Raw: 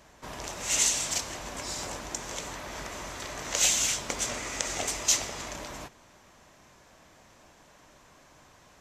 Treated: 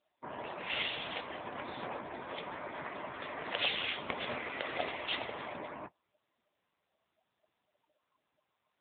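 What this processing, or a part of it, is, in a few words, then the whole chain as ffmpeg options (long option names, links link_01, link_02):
mobile call with aggressive noise cancelling: -af "highpass=frequency=170:poles=1,afftdn=noise_reduction=28:noise_floor=-44,volume=1dB" -ar 8000 -c:a libopencore_amrnb -b:a 7950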